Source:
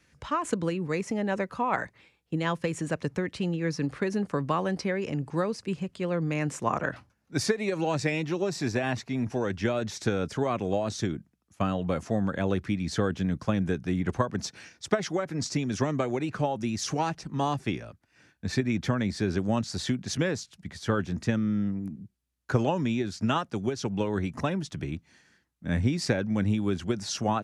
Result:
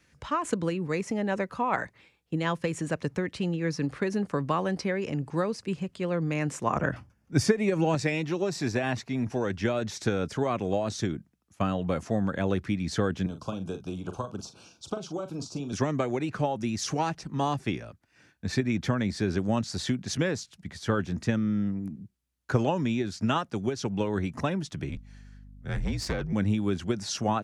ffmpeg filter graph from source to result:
-filter_complex "[0:a]asettb=1/sr,asplit=3[a][b][c];[a]atrim=end=6.764[d];[b]atrim=start=6.76:end=7.95,asetpts=PTS-STARTPTS,afade=t=in:d=0.004:c=qsin,afade=t=out:st=1.186:d=0.004:c=qsin,lowshelf=f=250:g=9.5,bandreject=f=4k:w=6[e];[c]atrim=start=7.946[f];[d][e]acrossfade=d=0.004:c1=hsin:c2=qsin[g];[g][f]acrossfade=d=0.004:c1=qsin:c2=hsin,asettb=1/sr,asplit=3[h][i][j];[h]atrim=end=13.264[k];[i]atrim=start=13.26:end=15.73,asetpts=PTS-STARTPTS,afade=t=in:d=0.004:c=qsin,afade=t=out:st=2.466:d=0.004:c=qsin,acrossover=split=440|1500[l][m][n];[l]acompressor=threshold=-35dB:ratio=4[o];[m]acompressor=threshold=-36dB:ratio=4[p];[n]acompressor=threshold=-43dB:ratio=4[q];[o][p][q]amix=inputs=3:normalize=0,asuperstop=centerf=1900:order=4:qfactor=1.4,asplit=2[r][s];[s]adelay=42,volume=-9.5dB[t];[r][t]amix=inputs=2:normalize=0,atrim=end_sample=108927[u];[j]atrim=start=15.726[v];[k][u]acrossfade=d=0.004:c1=hsin:c2=qsin[w];[w][v]acrossfade=d=0.004:c1=qsin:c2=hsin,asettb=1/sr,asplit=3[x][y][z];[x]atrim=end=24.894[aa];[y]atrim=start=24.89:end=26.33,asetpts=PTS-STARTPTS,afade=t=in:d=0.004:c=qsin,afade=t=out:st=1.436:d=0.004:c=qsin,aeval=exprs='(tanh(14.1*val(0)+0.45)-tanh(0.45))/14.1':c=same,afreqshift=-56,aeval=exprs='val(0)+0.00447*(sin(2*PI*50*n/s)+sin(2*PI*2*50*n/s)/2+sin(2*PI*3*50*n/s)/3+sin(2*PI*4*50*n/s)/4+sin(2*PI*5*50*n/s)/5)':c=same[ab];[z]atrim=start=26.326[ac];[aa][ab]acrossfade=d=0.004:c1=hsin:c2=qsin[ad];[ad][ac]acrossfade=d=0.004:c1=qsin:c2=hsin"

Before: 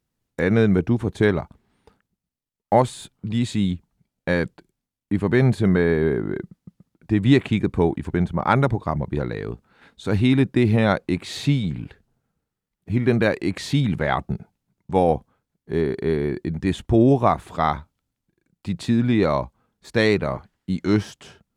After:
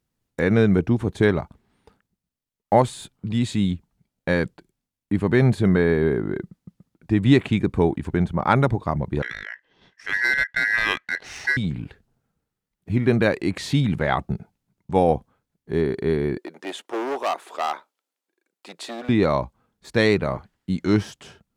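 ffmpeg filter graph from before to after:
-filter_complex "[0:a]asettb=1/sr,asplit=3[a][b][c];[a]atrim=end=9.224[d];[b]atrim=start=9.22:end=11.57,asetpts=PTS-STARTPTS,afade=t=in:d=0.004:c=qsin,afade=t=out:st=2.346:d=0.004:c=qsin,equalizer=f=440:t=o:w=0.47:g=-14,aeval=exprs='val(0)*sin(2*PI*1800*n/s)':c=same,adynamicsmooth=sensitivity=4:basefreq=5.4k[e];[c]atrim=start=11.566[f];[d][e]acrossfade=d=0.004:c1=hsin:c2=qsin[g];[g][f]acrossfade=d=0.004:c1=qsin:c2=hsin,asettb=1/sr,asplit=3[h][i][j];[h]atrim=end=16.374[k];[i]atrim=start=16.37:end=19.09,asetpts=PTS-STARTPTS,afade=t=in:d=0.004:c=qsin,afade=t=out:st=2.716:d=0.004:c=qsin,asoftclip=type=hard:threshold=-18.5dB,highpass=f=380:w=0.5412,highpass=f=380:w=1.3066[l];[j]atrim=start=19.086[m];[k][l]acrossfade=d=0.004:c1=hsin:c2=qsin[n];[n][m]acrossfade=d=0.004:c1=qsin:c2=hsin"

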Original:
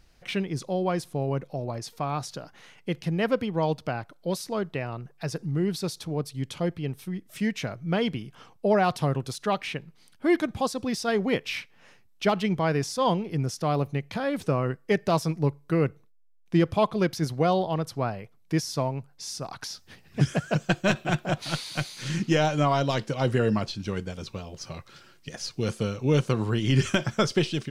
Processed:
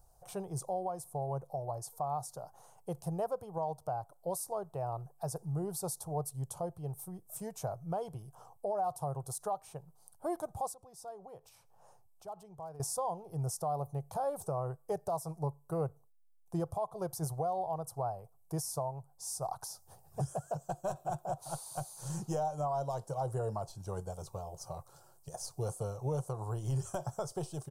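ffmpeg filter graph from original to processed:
-filter_complex "[0:a]asettb=1/sr,asplit=3[a][b][c];[a]atrim=end=10.744[d];[b]atrim=start=10.74:end=12.8,asetpts=PTS-STARTPTS,afade=t=in:d=0.004:c=qsin,afade=t=out:st=2.056:d=0.004:c=qsin,highshelf=f=8k:g=-6,acompressor=threshold=-45dB:ratio=3:attack=3.2:release=140:knee=1:detection=peak,aeval=exprs='0.0211*(abs(mod(val(0)/0.0211+3,4)-2)-1)':c=same[e];[c]atrim=start=12.796[f];[d][e]acrossfade=d=0.004:c1=hsin:c2=qsin[g];[g][f]acrossfade=d=0.004:c1=qsin:c2=hsin,firequalizer=gain_entry='entry(140,0);entry(240,-19);entry(370,-5);entry(760,10);entry(2000,-26);entry(6000,-2);entry(8700,10)':delay=0.05:min_phase=1,alimiter=limit=-21dB:level=0:latency=1:release=415,volume=-5dB"

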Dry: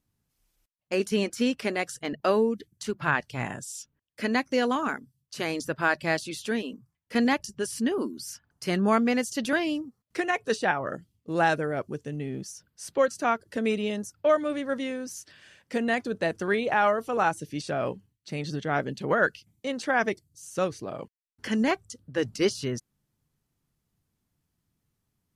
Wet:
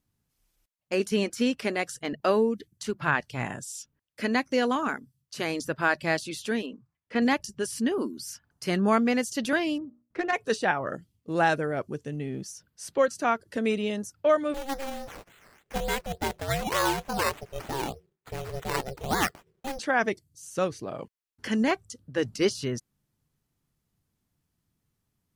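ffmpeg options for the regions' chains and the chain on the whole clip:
-filter_complex "[0:a]asettb=1/sr,asplit=3[a][b][c];[a]atrim=end=6.664[d];[b]atrim=start=6.66:end=7.22,asetpts=PTS-STARTPTS,afade=t=in:d=0.004:c=qsin,afade=t=out:st=0.556:d=0.004:c=qsin,lowpass=f=8.6k:w=0.5412,lowpass=f=8.6k:w=1.3066,bass=f=250:g=-4,treble=f=4k:g=-12[e];[c]atrim=start=7.216[f];[d][e]acrossfade=d=0.004:c1=hsin:c2=qsin[g];[g][f]acrossfade=d=0.004:c1=qsin:c2=hsin,asettb=1/sr,asplit=3[h][i][j];[h]atrim=end=9.784[k];[i]atrim=start=9.78:end=10.33,asetpts=PTS-STARTPTS,afade=t=in:d=0.004:c=qsin,afade=t=out:st=0.546:d=0.004:c=qsin,bandreject=f=60:t=h:w=6,bandreject=f=120:t=h:w=6,bandreject=f=180:t=h:w=6,bandreject=f=240:t=h:w=6,bandreject=f=300:t=h:w=6,bandreject=f=360:t=h:w=6,bandreject=f=420:t=h:w=6,bandreject=f=480:t=h:w=6,bandreject=f=540:t=h:w=6,bandreject=f=600:t=h:w=6,adynamicsmooth=sensitivity=1.5:basefreq=1.4k[l];[j]atrim=start=10.326[m];[k][l]acrossfade=d=0.004:c1=hsin:c2=qsin[n];[n][m]acrossfade=d=0.004:c1=qsin:c2=hsin,asettb=1/sr,asplit=3[o][p][q];[o]atrim=end=14.544[r];[p]atrim=start=14.54:end=19.79,asetpts=PTS-STARTPTS,afade=t=in:d=0.004:c=qsin,afade=t=out:st=5.246:d=0.004:c=qsin,acrusher=samples=11:mix=1:aa=0.000001:lfo=1:lforange=6.6:lforate=3.4,aeval=exprs='val(0)*sin(2*PI*270*n/s)':c=same[s];[q]atrim=start=19.786[t];[r][s]acrossfade=d=0.004:c1=hsin:c2=qsin[u];[u][t]acrossfade=d=0.004:c1=qsin:c2=hsin"

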